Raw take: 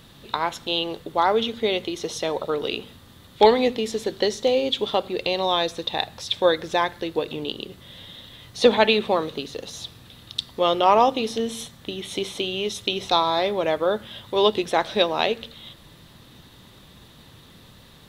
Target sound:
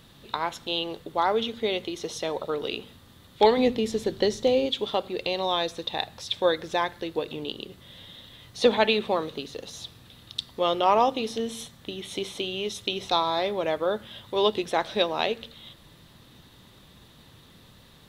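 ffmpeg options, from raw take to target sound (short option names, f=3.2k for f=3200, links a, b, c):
-filter_complex "[0:a]asettb=1/sr,asplit=3[a][b][c];[a]atrim=end=3.574[d];[b]atrim=start=3.57:end=4.66,asetpts=PTS-STARTPTS,afade=t=in:d=0.004:c=qsin,afade=t=out:st=1.086:d=0.004:c=qsin,lowshelf=f=290:g=9[e];[c]atrim=start=4.656[f];[d][e]acrossfade=d=0.004:c1=hsin:c2=qsin[g];[g][f]acrossfade=d=0.004:c1=qsin:c2=hsin,volume=-4dB"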